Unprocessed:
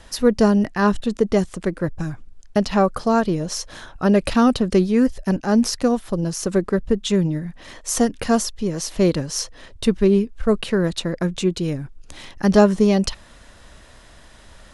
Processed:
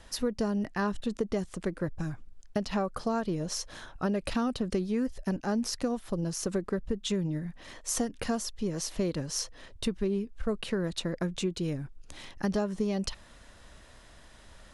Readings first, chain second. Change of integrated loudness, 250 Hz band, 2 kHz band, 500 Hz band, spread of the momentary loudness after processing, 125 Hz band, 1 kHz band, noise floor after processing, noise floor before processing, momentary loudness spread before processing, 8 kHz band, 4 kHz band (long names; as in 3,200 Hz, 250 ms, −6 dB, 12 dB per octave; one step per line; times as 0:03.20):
−12.0 dB, −12.5 dB, −11.0 dB, −13.0 dB, 7 LU, −11.0 dB, −13.0 dB, −54 dBFS, −47 dBFS, 10 LU, −8.0 dB, −8.5 dB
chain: downward compressor, threshold −19 dBFS, peak gain reduction 11 dB
level −7 dB